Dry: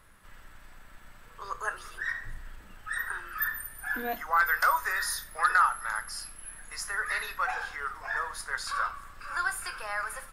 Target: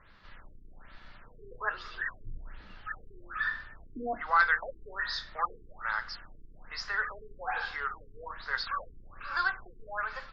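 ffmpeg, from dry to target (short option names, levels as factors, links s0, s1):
-af "highshelf=f=5700:t=q:w=3:g=-9.5,afftfilt=real='re*lt(b*sr/1024,430*pow(7900/430,0.5+0.5*sin(2*PI*1.2*pts/sr)))':imag='im*lt(b*sr/1024,430*pow(7900/430,0.5+0.5*sin(2*PI*1.2*pts/sr)))':win_size=1024:overlap=0.75"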